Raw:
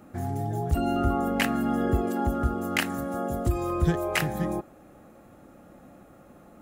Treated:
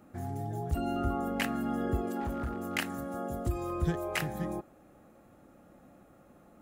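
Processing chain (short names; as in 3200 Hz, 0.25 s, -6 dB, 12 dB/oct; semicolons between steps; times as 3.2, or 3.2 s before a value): 2.2–2.75 hard clip -23.5 dBFS, distortion -19 dB; gain -6.5 dB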